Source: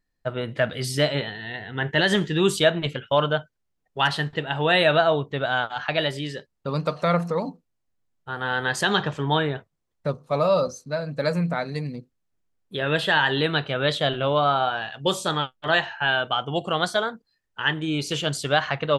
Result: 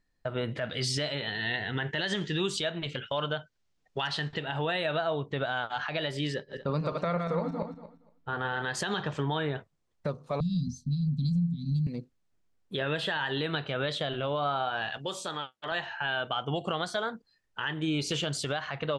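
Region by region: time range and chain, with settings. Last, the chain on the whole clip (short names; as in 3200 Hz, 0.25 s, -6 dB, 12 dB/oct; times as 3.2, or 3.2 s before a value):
0.65–4.48 LPF 6000 Hz + high shelf 3200 Hz +10 dB
6.34–8.62 regenerating reverse delay 0.117 s, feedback 40%, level -6 dB + LPF 2900 Hz 6 dB/oct
10.4–11.87 Chebyshev band-stop 250–3200 Hz, order 5 + tilt -3 dB/oct
14.97–15.72 HPF 310 Hz 6 dB/oct + compressor 2:1, threshold -42 dBFS
whole clip: compressor 6:1, threshold -28 dBFS; LPF 8600 Hz 12 dB/oct; limiter -22 dBFS; gain +2 dB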